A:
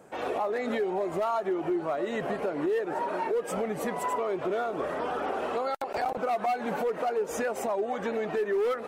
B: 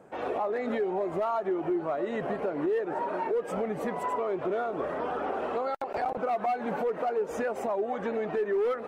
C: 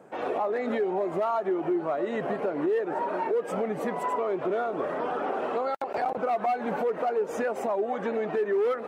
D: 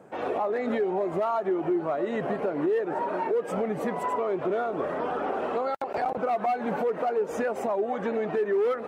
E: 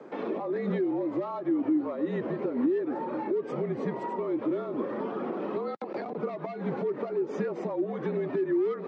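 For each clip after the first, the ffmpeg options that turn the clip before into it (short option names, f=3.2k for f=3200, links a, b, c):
-af "highshelf=f=3.5k:g=-12"
-af "highpass=130,volume=2dB"
-af "lowshelf=f=99:g=11"
-filter_complex "[0:a]acrossover=split=290[a][b];[b]acompressor=threshold=-44dB:ratio=2.5[c];[a][c]amix=inputs=2:normalize=0,afreqshift=-45,highpass=f=210:w=0.5412,highpass=f=210:w=1.3066,equalizer=f=700:t=q:w=4:g=-8,equalizer=f=1.5k:t=q:w=4:g=-5,equalizer=f=2.8k:t=q:w=4:g=-5,lowpass=f=5.1k:w=0.5412,lowpass=f=5.1k:w=1.3066,volume=7dB"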